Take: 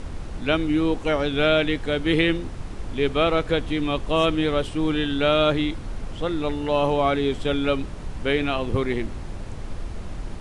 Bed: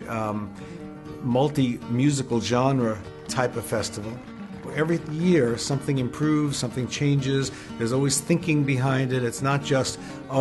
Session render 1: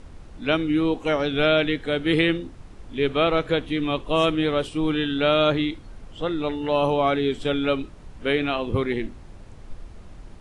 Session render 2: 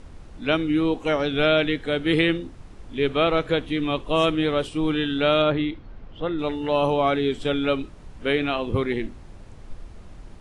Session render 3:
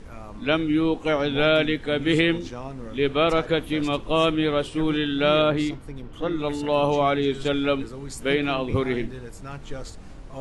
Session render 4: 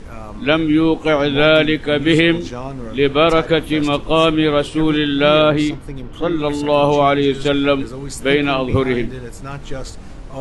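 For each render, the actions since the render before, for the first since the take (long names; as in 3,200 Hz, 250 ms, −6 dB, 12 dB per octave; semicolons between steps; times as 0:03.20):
noise reduction from a noise print 10 dB
0:05.42–0:06.39: high-frequency loss of the air 210 metres
mix in bed −14.5 dB
level +7.5 dB; brickwall limiter −2 dBFS, peak gain reduction 2 dB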